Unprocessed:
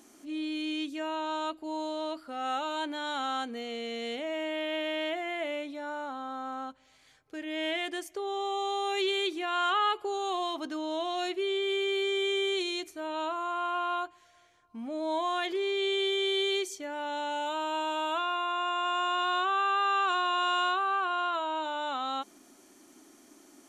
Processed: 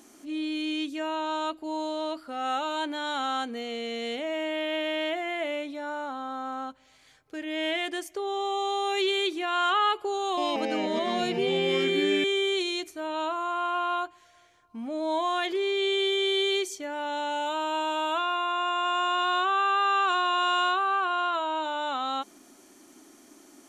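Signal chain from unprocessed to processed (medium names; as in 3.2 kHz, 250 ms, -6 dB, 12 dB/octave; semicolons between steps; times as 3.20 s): 10.19–12.24 s: ever faster or slower copies 183 ms, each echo -5 st, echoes 2; trim +3 dB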